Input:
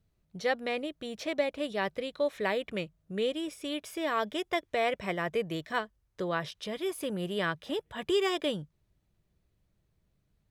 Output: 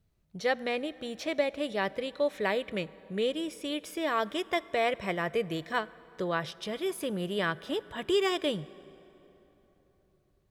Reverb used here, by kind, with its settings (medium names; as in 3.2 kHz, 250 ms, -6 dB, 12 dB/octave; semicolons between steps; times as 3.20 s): plate-style reverb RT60 3.8 s, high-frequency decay 0.6×, DRR 19 dB; trim +1 dB